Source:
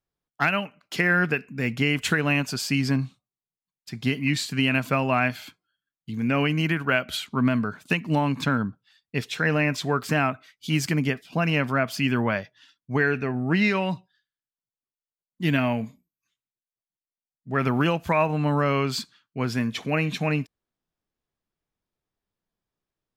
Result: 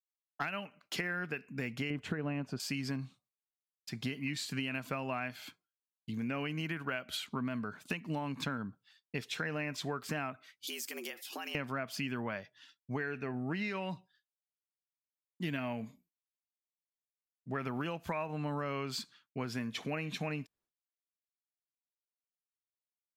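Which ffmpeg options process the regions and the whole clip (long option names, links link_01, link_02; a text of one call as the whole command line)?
ffmpeg -i in.wav -filter_complex "[0:a]asettb=1/sr,asplit=3[link_01][link_02][link_03];[link_01]atrim=end=1.904[link_04];[link_02]atrim=start=1.9:end=2.6,asetpts=PTS-STARTPTS,afade=type=in:duration=0.004:curve=qsin,afade=type=out:start_time=0.696:duration=0.004:curve=qsin,lowpass=frequency=3700:poles=1,tiltshelf=frequency=1300:gain=7.5[link_05];[link_03]atrim=start=2.596[link_06];[link_04][link_05]acrossfade=duration=0.004:curve1=hsin:curve2=qsin[link_07];[link_07][link_06]acrossfade=duration=0.004:curve1=qsin:curve2=hsin,asettb=1/sr,asplit=3[link_08][link_09][link_10];[link_08]atrim=end=10.674[link_11];[link_09]atrim=start=10.67:end=11.55,asetpts=PTS-STARTPTS,afade=type=in:duration=0.004:curve=qsin,afade=type=out:start_time=0.876:duration=0.004:curve=qsin,aemphasis=mode=production:type=riaa,acompressor=threshold=-33dB:ratio=16:attack=3.2:release=140:knee=1:detection=peak,afreqshift=100[link_12];[link_10]atrim=start=11.546[link_13];[link_11][link_12]acrossfade=duration=0.004:curve1=hsin:curve2=qsin[link_14];[link_14][link_13]acrossfade=duration=0.004:curve1=qsin:curve2=hsin,agate=range=-33dB:threshold=-55dB:ratio=3:detection=peak,lowshelf=frequency=130:gain=-6,acompressor=threshold=-31dB:ratio=5,volume=-3.5dB" out.wav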